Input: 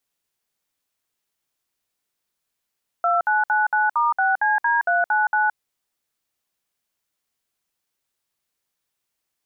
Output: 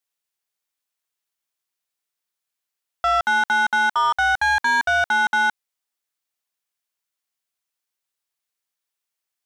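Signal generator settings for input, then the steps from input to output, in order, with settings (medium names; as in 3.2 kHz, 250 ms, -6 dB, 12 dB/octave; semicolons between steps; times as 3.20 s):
DTMF "2999*6CD399", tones 169 ms, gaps 60 ms, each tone -19 dBFS
bass shelf 460 Hz -10 dB; waveshaping leveller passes 2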